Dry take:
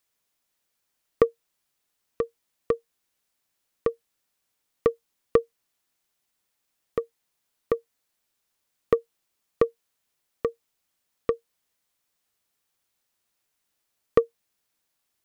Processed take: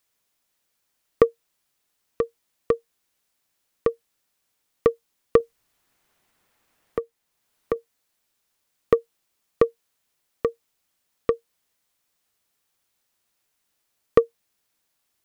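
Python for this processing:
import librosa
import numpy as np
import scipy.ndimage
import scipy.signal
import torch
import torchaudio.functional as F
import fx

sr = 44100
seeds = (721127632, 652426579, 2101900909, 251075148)

y = fx.band_squash(x, sr, depth_pct=40, at=(5.4, 7.76))
y = F.gain(torch.from_numpy(y), 3.0).numpy()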